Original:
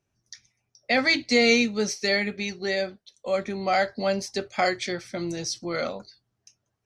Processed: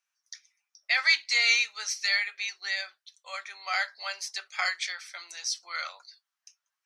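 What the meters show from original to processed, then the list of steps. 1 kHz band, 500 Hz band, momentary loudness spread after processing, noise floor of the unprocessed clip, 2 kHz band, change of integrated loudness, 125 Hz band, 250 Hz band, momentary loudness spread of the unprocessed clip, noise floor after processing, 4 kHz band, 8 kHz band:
−8.5 dB, −24.0 dB, 17 LU, −79 dBFS, 0.0 dB, −2.5 dB, below −40 dB, below −40 dB, 12 LU, below −85 dBFS, 0.0 dB, 0.0 dB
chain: high-pass filter 1,100 Hz 24 dB per octave

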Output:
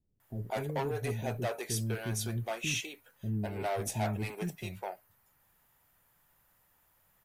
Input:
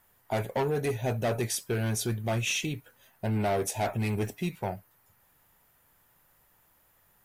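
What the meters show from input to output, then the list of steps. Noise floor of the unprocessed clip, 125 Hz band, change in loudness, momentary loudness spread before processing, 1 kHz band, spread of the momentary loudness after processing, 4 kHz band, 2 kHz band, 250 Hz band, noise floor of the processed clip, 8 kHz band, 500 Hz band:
−66 dBFS, −4.0 dB, −5.0 dB, 8 LU, −4.5 dB, 10 LU, −4.0 dB, −4.0 dB, −5.0 dB, −70 dBFS, −4.0 dB, −5.5 dB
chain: multiband delay without the direct sound lows, highs 200 ms, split 370 Hz
level −4 dB

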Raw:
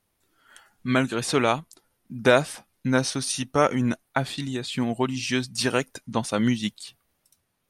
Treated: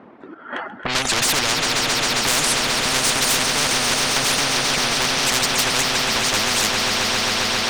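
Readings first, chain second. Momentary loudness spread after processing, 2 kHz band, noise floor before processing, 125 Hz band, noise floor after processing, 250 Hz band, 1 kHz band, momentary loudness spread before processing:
2 LU, +10.0 dB, −74 dBFS, −2.0 dB, −39 dBFS, −3.5 dB, +6.5 dB, 10 LU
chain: high-pass filter 120 Hz 12 dB per octave
low-pass that shuts in the quiet parts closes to 1,400 Hz, open at −17 dBFS
noise gate −48 dBFS, range −8 dB
reverb reduction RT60 0.6 s
parametric band 250 Hz +11 dB 1.2 octaves
square-wave tremolo 1.9 Hz, depth 65%, duty 65%
mid-hump overdrive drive 37 dB, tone 1,400 Hz, clips at −1 dBFS
on a send: echo that builds up and dies away 134 ms, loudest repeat 5, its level −11.5 dB
on the sum: every bin compressed towards the loudest bin 10 to 1
level −5 dB

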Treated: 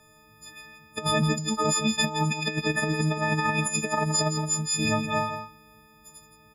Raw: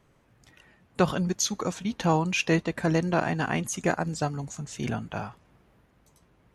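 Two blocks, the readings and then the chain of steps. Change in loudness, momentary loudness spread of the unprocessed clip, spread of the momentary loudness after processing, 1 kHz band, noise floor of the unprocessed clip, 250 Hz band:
+2.5 dB, 11 LU, 8 LU, +2.5 dB, −64 dBFS, 0.0 dB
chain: every partial snapped to a pitch grid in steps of 6 semitones
compressor whose output falls as the input rises −25 dBFS, ratio −0.5
on a send: single-tap delay 168 ms −9 dB

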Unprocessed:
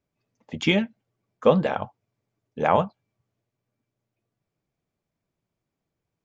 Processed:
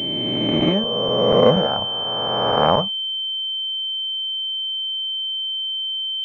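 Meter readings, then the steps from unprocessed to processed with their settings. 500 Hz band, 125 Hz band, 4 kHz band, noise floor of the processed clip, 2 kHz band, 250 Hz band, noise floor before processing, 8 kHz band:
+6.5 dB, +5.5 dB, +21.0 dB, −25 dBFS, −1.5 dB, +5.0 dB, −84 dBFS, can't be measured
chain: peak hold with a rise ahead of every peak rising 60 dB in 2.42 s
regular buffer underruns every 0.24 s, samples 256, zero, from 0:00.36
switching amplifier with a slow clock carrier 3,100 Hz

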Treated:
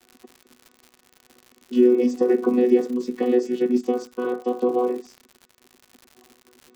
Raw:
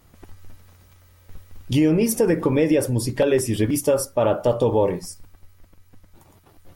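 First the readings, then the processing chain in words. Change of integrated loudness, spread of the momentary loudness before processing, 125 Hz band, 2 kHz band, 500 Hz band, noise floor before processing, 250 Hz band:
−1.0 dB, 5 LU, below −20 dB, −7.0 dB, −0.5 dB, −55 dBFS, +0.5 dB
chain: channel vocoder with a chord as carrier bare fifth, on B3
surface crackle 140 per second −35 dBFS

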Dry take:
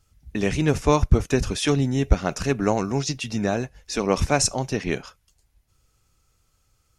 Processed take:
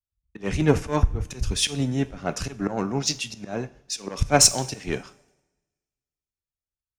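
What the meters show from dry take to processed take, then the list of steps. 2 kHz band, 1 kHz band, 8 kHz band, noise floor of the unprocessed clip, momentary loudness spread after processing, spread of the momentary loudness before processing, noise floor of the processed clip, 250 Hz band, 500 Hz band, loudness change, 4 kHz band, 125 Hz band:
−2.5 dB, −2.5 dB, +5.5 dB, −68 dBFS, 16 LU, 7 LU, below −85 dBFS, −3.5 dB, −4.0 dB, −1.0 dB, +4.0 dB, −3.0 dB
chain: harmonic generator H 4 −15 dB, 5 −17 dB, 6 −26 dB, 7 −24 dB, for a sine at −3.5 dBFS
in parallel at −4 dB: soft clipping −20.5 dBFS, distortion −7 dB
on the sum: volume swells 116 ms
coupled-rooms reverb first 0.57 s, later 4.2 s, from −15 dB, DRR 12 dB
multiband upward and downward expander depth 100%
level −6.5 dB

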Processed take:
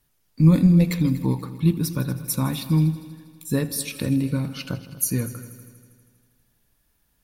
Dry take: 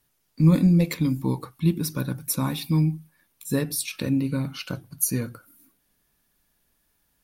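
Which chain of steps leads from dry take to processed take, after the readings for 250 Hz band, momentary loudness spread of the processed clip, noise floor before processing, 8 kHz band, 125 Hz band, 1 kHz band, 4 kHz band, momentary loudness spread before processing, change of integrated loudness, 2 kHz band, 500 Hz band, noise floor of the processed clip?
+2.0 dB, 15 LU, −71 dBFS, 0.0 dB, +3.0 dB, 0.0 dB, 0.0 dB, 12 LU, +2.0 dB, 0.0 dB, +0.5 dB, −68 dBFS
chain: low-shelf EQ 120 Hz +7 dB
echo machine with several playback heads 80 ms, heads all three, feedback 54%, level −20 dB

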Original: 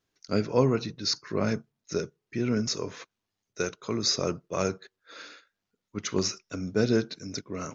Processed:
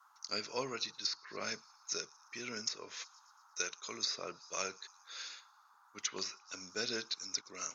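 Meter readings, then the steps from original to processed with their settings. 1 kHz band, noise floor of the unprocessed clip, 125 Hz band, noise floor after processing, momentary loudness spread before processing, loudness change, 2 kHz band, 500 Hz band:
−8.5 dB, −85 dBFS, −27.0 dB, −66 dBFS, 16 LU, −10.5 dB, −4.5 dB, −16.0 dB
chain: noise in a band 810–1,400 Hz −57 dBFS
first difference
delay with a high-pass on its return 116 ms, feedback 59%, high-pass 3,500 Hz, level −24 dB
treble cut that deepens with the level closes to 2,000 Hz, closed at −34.5 dBFS
level +7.5 dB

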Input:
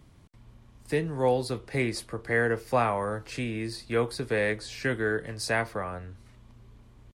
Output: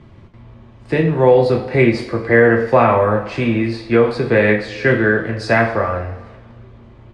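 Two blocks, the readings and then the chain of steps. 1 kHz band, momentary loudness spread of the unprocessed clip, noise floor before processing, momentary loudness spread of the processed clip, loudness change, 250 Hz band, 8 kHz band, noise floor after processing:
+12.5 dB, 8 LU, −55 dBFS, 9 LU, +13.5 dB, +15.5 dB, can't be measured, −43 dBFS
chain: low-pass filter 3,200 Hz 12 dB per octave
parametric band 440 Hz +3.5 dB 2.8 octaves
coupled-rooms reverb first 0.47 s, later 1.8 s, from −16 dB, DRR 0.5 dB
boost into a limiter +10.5 dB
level −1 dB

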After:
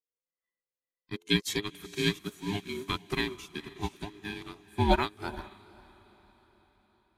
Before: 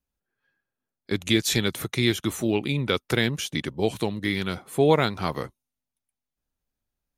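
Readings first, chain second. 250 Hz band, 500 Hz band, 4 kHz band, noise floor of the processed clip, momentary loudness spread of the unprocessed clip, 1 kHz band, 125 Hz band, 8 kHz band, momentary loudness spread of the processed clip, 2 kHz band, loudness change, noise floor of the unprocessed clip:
−8.0 dB, −10.0 dB, −6.0 dB, below −85 dBFS, 9 LU, −3.0 dB, −8.0 dB, −10.5 dB, 15 LU, −6.5 dB, −7.5 dB, below −85 dBFS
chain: frequency inversion band by band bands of 500 Hz
low-shelf EQ 160 Hz −6 dB
feedback delay with all-pass diffusion 479 ms, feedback 50%, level −7.5 dB
expander for the loud parts 2.5 to 1, over −32 dBFS

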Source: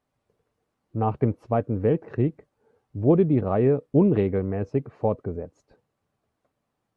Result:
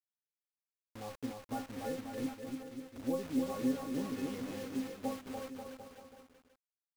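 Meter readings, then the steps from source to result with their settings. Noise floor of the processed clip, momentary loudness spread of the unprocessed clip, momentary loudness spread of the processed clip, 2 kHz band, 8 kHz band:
below −85 dBFS, 13 LU, 14 LU, −6.0 dB, can't be measured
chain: pitch vibrato 1.6 Hz 65 cents
stiff-string resonator 260 Hz, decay 0.29 s, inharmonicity 0.008
bit reduction 8 bits
bouncing-ball delay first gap 290 ms, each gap 0.85×, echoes 5
level −1 dB

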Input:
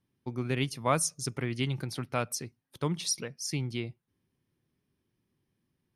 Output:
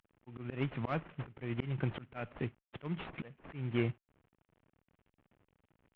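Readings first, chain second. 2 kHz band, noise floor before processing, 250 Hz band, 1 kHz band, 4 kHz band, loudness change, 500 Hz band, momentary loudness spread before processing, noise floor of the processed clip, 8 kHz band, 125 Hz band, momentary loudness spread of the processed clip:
−6.5 dB, −81 dBFS, −4.0 dB, −10.5 dB, −16.0 dB, −7.0 dB, −6.5 dB, 9 LU, below −85 dBFS, below −40 dB, −4.0 dB, 12 LU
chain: variable-slope delta modulation 16 kbit/s
harmonic generator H 2 −14 dB, 4 −23 dB, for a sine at −16 dBFS
volume swells 360 ms
level +6.5 dB

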